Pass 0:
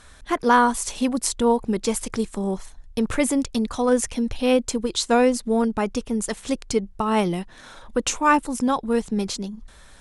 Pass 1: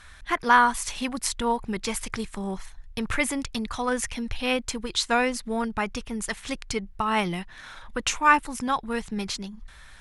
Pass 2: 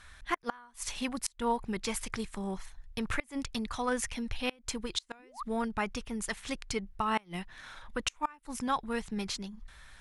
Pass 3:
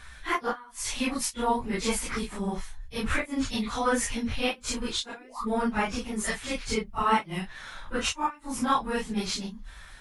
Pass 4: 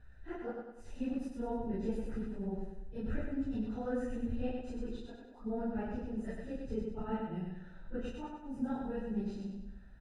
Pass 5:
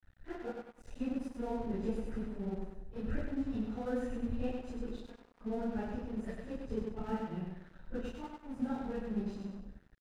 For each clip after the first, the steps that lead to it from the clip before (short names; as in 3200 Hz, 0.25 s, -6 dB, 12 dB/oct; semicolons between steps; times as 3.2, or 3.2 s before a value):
ten-band EQ 250 Hz -7 dB, 500 Hz -8 dB, 2000 Hz +5 dB, 8000 Hz -5 dB
painted sound rise, 5.19–5.43, 220–1300 Hz -25 dBFS; flipped gate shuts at -13 dBFS, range -30 dB; gain -5 dB
phase scrambler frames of 0.1 s; gain +6 dB
running mean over 40 samples; feedback echo 97 ms, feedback 47%, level -3.5 dB; gain -6.5 dB
crossover distortion -53 dBFS; gain +1 dB